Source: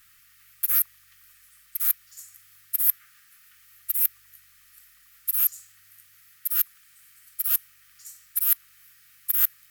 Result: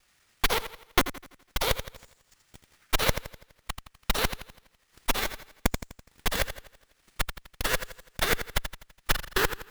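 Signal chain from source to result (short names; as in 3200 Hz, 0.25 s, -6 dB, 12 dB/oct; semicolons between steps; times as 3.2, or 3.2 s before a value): slices in reverse order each 0.195 s, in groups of 2; on a send: frequency-shifting echo 83 ms, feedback 54%, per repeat +58 Hz, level -5 dB; on the sum: transient shaper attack +12 dB, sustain -11 dB; running maximum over 3 samples; gain -8 dB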